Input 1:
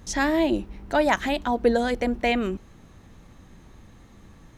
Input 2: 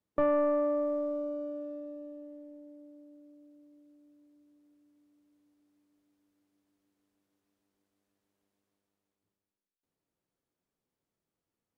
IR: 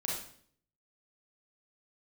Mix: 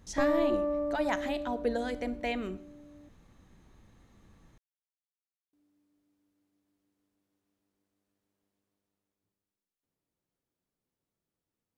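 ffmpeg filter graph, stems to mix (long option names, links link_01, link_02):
-filter_complex "[0:a]volume=-11.5dB,asplit=2[link_01][link_02];[link_02]volume=-15.5dB[link_03];[1:a]lowshelf=frequency=240:gain=5,volume=-2.5dB,asplit=3[link_04][link_05][link_06];[link_04]atrim=end=3.09,asetpts=PTS-STARTPTS,afade=type=out:start_time=3.086:duration=0.004:curve=hsin[link_07];[link_05]atrim=start=3.09:end=5.53,asetpts=PTS-STARTPTS,volume=0[link_08];[link_06]atrim=start=5.53,asetpts=PTS-STARTPTS,afade=type=in:duration=0.004:curve=hsin[link_09];[link_07][link_08][link_09]concat=n=3:v=0:a=1[link_10];[2:a]atrim=start_sample=2205[link_11];[link_03][link_11]afir=irnorm=-1:irlink=0[link_12];[link_01][link_10][link_12]amix=inputs=3:normalize=0"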